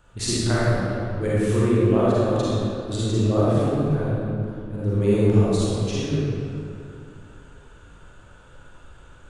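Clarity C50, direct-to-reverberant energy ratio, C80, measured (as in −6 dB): −6.5 dB, −9.5 dB, −3.5 dB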